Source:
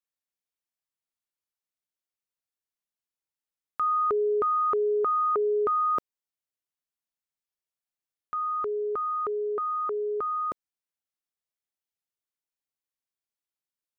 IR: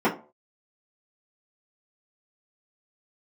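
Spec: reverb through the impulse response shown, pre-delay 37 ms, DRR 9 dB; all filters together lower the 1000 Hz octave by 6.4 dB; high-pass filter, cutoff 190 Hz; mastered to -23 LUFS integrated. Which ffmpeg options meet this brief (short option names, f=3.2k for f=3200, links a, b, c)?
-filter_complex "[0:a]highpass=190,equalizer=f=1k:t=o:g=-9,asplit=2[a][b];[1:a]atrim=start_sample=2205,adelay=37[c];[b][c]afir=irnorm=-1:irlink=0,volume=-25.5dB[d];[a][d]amix=inputs=2:normalize=0,volume=7.5dB"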